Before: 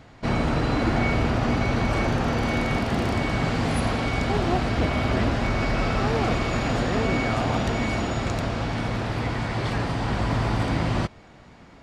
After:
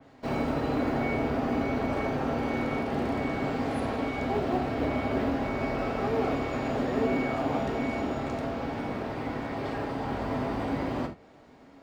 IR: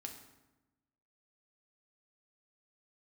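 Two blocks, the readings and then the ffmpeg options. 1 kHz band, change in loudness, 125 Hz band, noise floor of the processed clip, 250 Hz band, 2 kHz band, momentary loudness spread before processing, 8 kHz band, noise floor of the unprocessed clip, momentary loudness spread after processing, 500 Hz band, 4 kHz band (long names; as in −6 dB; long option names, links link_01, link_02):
−4.5 dB, −5.5 dB, −11.0 dB, −54 dBFS, −3.5 dB, −8.0 dB, 4 LU, below −10 dB, −49 dBFS, 5 LU, −2.0 dB, −11.5 dB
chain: -filter_complex "[0:a]acrossover=split=230|780|2400[link_01][link_02][link_03][link_04];[link_02]acontrast=90[link_05];[link_01][link_05][link_03][link_04]amix=inputs=4:normalize=0,acrusher=bits=9:mode=log:mix=0:aa=0.000001,lowshelf=frequency=140:gain=-7[link_06];[1:a]atrim=start_sample=2205,atrim=end_sample=3969[link_07];[link_06][link_07]afir=irnorm=-1:irlink=0,adynamicequalizer=threshold=0.00398:dfrequency=3400:dqfactor=0.7:tfrequency=3400:tqfactor=0.7:attack=5:release=100:ratio=0.375:range=3:mode=cutabove:tftype=highshelf,volume=-4dB"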